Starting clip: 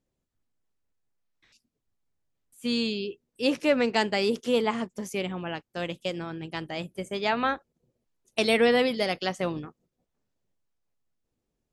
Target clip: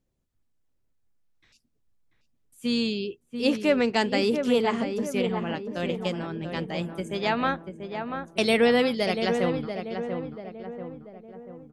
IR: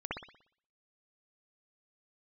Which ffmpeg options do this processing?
-filter_complex "[0:a]lowshelf=f=170:g=6.5,asplit=2[a][b];[b]adelay=688,lowpass=f=1.5k:p=1,volume=-6dB,asplit=2[c][d];[d]adelay=688,lowpass=f=1.5k:p=1,volume=0.52,asplit=2[e][f];[f]adelay=688,lowpass=f=1.5k:p=1,volume=0.52,asplit=2[g][h];[h]adelay=688,lowpass=f=1.5k:p=1,volume=0.52,asplit=2[i][j];[j]adelay=688,lowpass=f=1.5k:p=1,volume=0.52,asplit=2[k][l];[l]adelay=688,lowpass=f=1.5k:p=1,volume=0.52[m];[a][c][e][g][i][k][m]amix=inputs=7:normalize=0"

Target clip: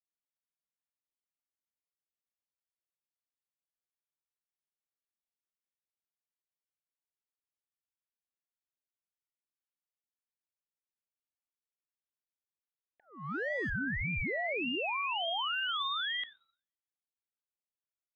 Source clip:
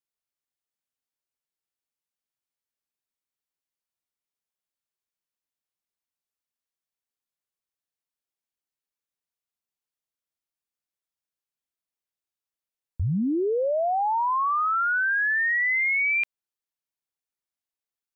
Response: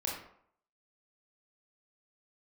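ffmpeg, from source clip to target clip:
-filter_complex "[0:a]asettb=1/sr,asplit=3[a][b][c];[a]atrim=end=14.274[d];[b]atrim=start=14.27:end=15.28,asetpts=PTS-STARTPTS,afade=t=in:d=0.004:c=qsin,afade=t=out:st=1.006:d=0.004:c=qsin,adynamicsmooth=sensitivity=5.5:basefreq=1.7k[e];[c]atrim=start=15.276[f];[d][e]acrossfade=d=0.004:c1=hsin:c2=qsin[g];[g][f]acrossfade=d=0.004:c1=qsin:c2=hsin,highpass=f=290:t=q:w=0.5412,highpass=f=290:t=q:w=1.307,lowpass=f=2.5k:t=q:w=0.5176,lowpass=f=2.5k:t=q:w=0.7071,lowpass=f=2.5k:t=q:w=1.932,afreqshift=230,asettb=1/sr,asplit=3[h][i][j];[h]atrim=end=13.054[k];[i]atrim=start=13.05:end=13.7,asetpts=PTS-STARTPTS,afade=t=in:d=0.004:c=qsin,afade=t=out:st=0.646:d=0.004:c=qsin,adynamicsmooth=sensitivity=4.5:basefreq=850[l];[j]atrim=start=13.696[m];[k][l]acrossfade=d=0.004:c1=hsin:c2=qsin[n];[n][m]acrossfade=d=0.004:c1=qsin:c2=hsin,asplit=2[o][p];[1:a]atrim=start_sample=2205[q];[p][q]afir=irnorm=-1:irlink=0,volume=-17.5dB[r];[o][r]amix=inputs=2:normalize=0,aeval=exprs='val(0)*sin(2*PI*950*n/s+950*0.35/1.7*sin(2*PI*1.7*n/s))':c=same,volume=-8dB"

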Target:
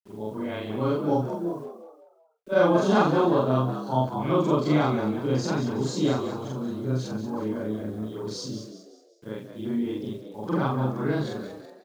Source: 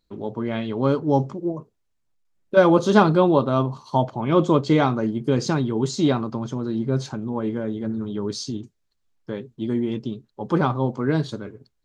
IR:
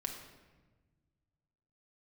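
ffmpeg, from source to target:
-filter_complex "[0:a]afftfilt=real='re':imag='-im':win_size=4096:overlap=0.75,acrusher=bits=9:mix=0:aa=0.000001,asplit=5[a][b][c][d][e];[b]adelay=185,afreqshift=78,volume=-10dB[f];[c]adelay=370,afreqshift=156,volume=-17.5dB[g];[d]adelay=555,afreqshift=234,volume=-25.1dB[h];[e]adelay=740,afreqshift=312,volume=-32.6dB[i];[a][f][g][h][i]amix=inputs=5:normalize=0"

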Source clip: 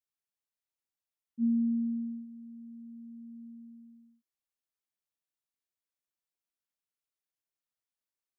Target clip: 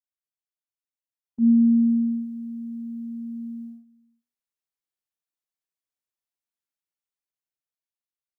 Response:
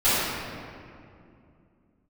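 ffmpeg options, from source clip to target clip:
-af "bandreject=f=60:t=h:w=6,bandreject=f=120:t=h:w=6,bandreject=f=180:t=h:w=6,bandreject=f=240:t=h:w=6,agate=range=-16dB:threshold=-51dB:ratio=16:detection=peak,dynaudnorm=f=600:g=5:m=6.5dB,volume=7.5dB"

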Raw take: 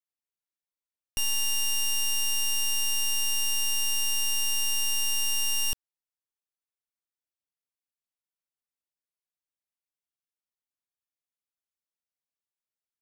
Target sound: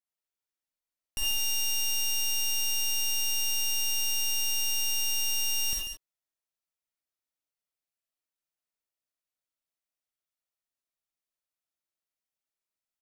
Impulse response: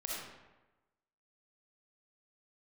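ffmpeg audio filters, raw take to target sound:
-filter_complex "[0:a]aecho=1:1:49|140:0.237|0.398[a];[1:a]atrim=start_sample=2205,atrim=end_sample=4410[b];[a][b]afir=irnorm=-1:irlink=0"

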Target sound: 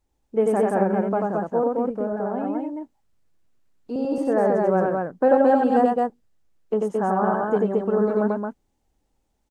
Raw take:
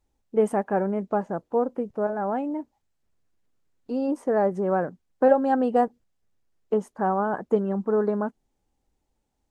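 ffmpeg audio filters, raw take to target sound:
-filter_complex "[0:a]asettb=1/sr,asplit=3[a][b][c];[a]atrim=end=1.714[d];[b]atrim=start=1.71:end=3.96,asetpts=PTS-STARTPTS,afade=t=in:d=0.004:c=qsin,afade=t=out:st=2.246:d=0.004:c=qsin,acrossover=split=490[e][f];[f]acompressor=threshold=-34dB:ratio=4[g];[e][g]amix=inputs=2:normalize=0[h];[c]atrim=start=3.956[i];[d][h]acrossfade=d=0.004:c1=hsin:c2=qsin[j];[j][i]acrossfade=d=0.004:c1=qsin:c2=hsin,aecho=1:1:90.38|221.6:0.794|0.794"

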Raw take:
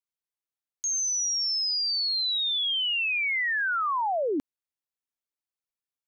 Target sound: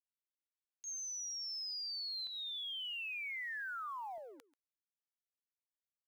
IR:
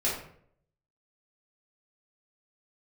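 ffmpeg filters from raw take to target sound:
-af "agate=range=-38dB:threshold=-24dB:ratio=16:detection=peak,highpass=1.2k,asetnsamples=n=441:p=0,asendcmd='2.27 equalizer g 4;4.18 equalizer g -3.5',equalizer=f=2.4k:w=0.41:g=12,acompressor=threshold=-55dB:ratio=5,acrusher=bits=8:mode=log:mix=0:aa=0.000001,aecho=1:1:137:0.112,volume=13dB"

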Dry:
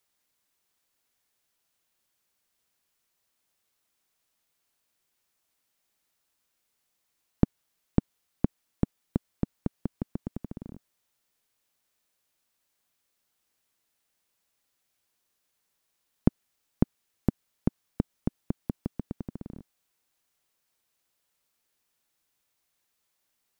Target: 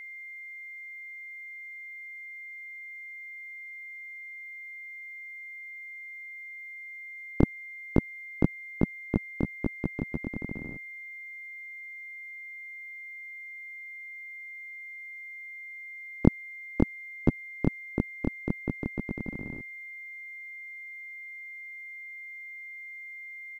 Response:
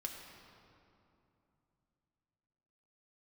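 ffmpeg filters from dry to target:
-filter_complex "[0:a]asplit=3[a][b][c];[b]asetrate=37084,aresample=44100,atempo=1.18921,volume=-10dB[d];[c]asetrate=58866,aresample=44100,atempo=0.749154,volume=-2dB[e];[a][d][e]amix=inputs=3:normalize=0,aeval=exprs='val(0)+0.01*sin(2*PI*2100*n/s)':c=same"

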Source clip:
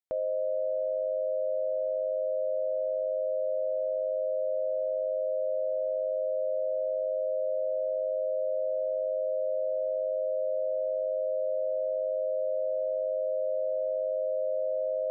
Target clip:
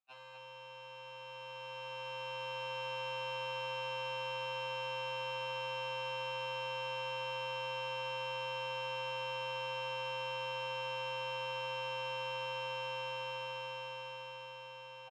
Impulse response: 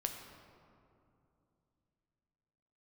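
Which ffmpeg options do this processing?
-filter_complex "[0:a]asplit=2[a][b];[b]alimiter=level_in=10.5dB:limit=-24dB:level=0:latency=1:release=15,volume=-10.5dB,volume=1.5dB[c];[a][c]amix=inputs=2:normalize=0,bandreject=f=710:w=12,aeval=exprs='0.0168*(abs(mod(val(0)/0.0168+3,4)-2)-1)':c=same,asplit=3[d][e][f];[d]bandpass=f=730:t=q:w=8,volume=0dB[g];[e]bandpass=f=1.09k:t=q:w=8,volume=-6dB[h];[f]bandpass=f=2.44k:t=q:w=8,volume=-9dB[i];[g][h][i]amix=inputs=3:normalize=0,equalizer=f=340:t=o:w=1.5:g=-11,aecho=1:1:55.39|244.9:0.316|0.501,dynaudnorm=f=310:g=13:m=12dB,afftfilt=real='re*2.45*eq(mod(b,6),0)':imag='im*2.45*eq(mod(b,6),0)':win_size=2048:overlap=0.75,volume=12.5dB"

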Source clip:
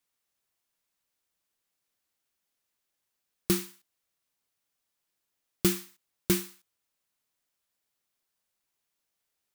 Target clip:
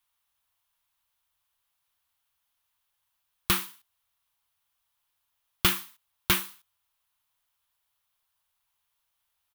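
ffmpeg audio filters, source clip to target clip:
-filter_complex "[0:a]firequalizer=gain_entry='entry(100,0);entry(150,-13);entry(220,-14);entry(320,-17);entry(960,6);entry(2000,3);entry(3200,8);entry(4700,1);entry(7700,-1);entry(11000,5)':delay=0.05:min_phase=1,asplit=2[a][b];[b]adynamicsmooth=sensitivity=4:basefreq=1.2k,volume=2.5dB[c];[a][c]amix=inputs=2:normalize=0"

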